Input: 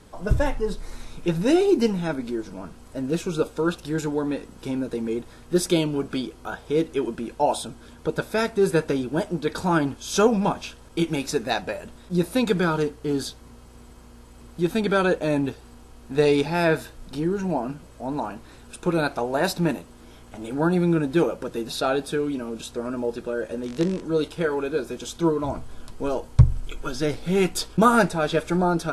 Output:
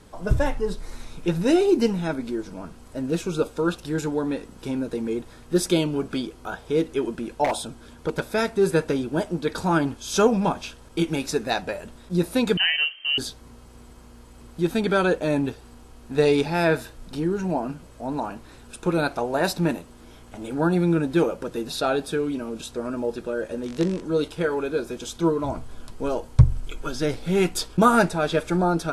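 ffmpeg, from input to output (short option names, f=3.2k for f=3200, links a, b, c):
-filter_complex "[0:a]asettb=1/sr,asplit=3[a][b][c];[a]atrim=end=7.444[d];[b]atrim=start=7.44:end=8.2,asetpts=PTS-STARTPTS,afade=t=in:d=0.004:c=qsin,afade=t=out:st=0.756:d=0.004:c=qsin,aeval=exprs='0.141*(abs(mod(val(0)/0.141+3,4)-2)-1)':c=same[e];[c]atrim=start=8.196[f];[d][e]acrossfade=d=0.004:c1=hsin:c2=qsin[g];[g][f]acrossfade=d=0.004:c1=qsin:c2=hsin,asettb=1/sr,asplit=3[h][i][j];[h]atrim=end=12.574[k];[i]atrim=start=12.57:end=13.18,asetpts=PTS-STARTPTS,afade=t=in:d=0.004:c=qsin,afade=t=out:st=0.606:d=0.004:c=qsin,lowpass=f=2.7k:t=q:w=0.5098,lowpass=f=2.7k:t=q:w=0.6013,lowpass=f=2.7k:t=q:w=0.9,lowpass=f=2.7k:t=q:w=2.563,afreqshift=-3200[l];[j]atrim=start=13.176[m];[k][l]acrossfade=d=0.004:c1=hsin:c2=qsin[n];[n][m]acrossfade=d=0.004:c1=qsin:c2=hsin"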